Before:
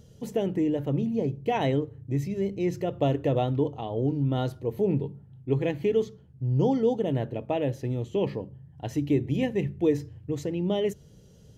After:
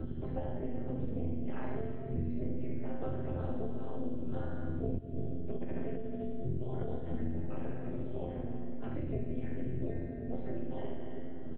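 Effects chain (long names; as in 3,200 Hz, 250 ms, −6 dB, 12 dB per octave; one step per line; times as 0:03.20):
drawn EQ curve 510 Hz 0 dB, 800 Hz −9 dB, 1,400 Hz +8 dB, 2,800 Hz −9 dB
phase shifter 0.41 Hz, delay 4.6 ms, feedback 61%
low-shelf EQ 210 Hz +9.5 dB
mains-hum notches 50/100/150/200/250/300/350/400 Hz
linear-prediction vocoder at 8 kHz whisper
resonators tuned to a chord F2 fifth, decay 0.52 s
reverse bouncing-ball delay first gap 70 ms, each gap 1.1×, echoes 5
0:04.98–0:07.00: compressor whose output falls as the input rises −35 dBFS, ratio −1
amplitude modulation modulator 240 Hz, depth 80%
convolution reverb RT60 1.6 s, pre-delay 105 ms, DRR 13 dB
multiband upward and downward compressor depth 100%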